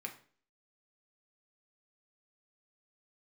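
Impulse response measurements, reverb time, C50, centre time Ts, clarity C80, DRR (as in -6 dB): 0.45 s, 11.5 dB, 12 ms, 16.0 dB, 2.0 dB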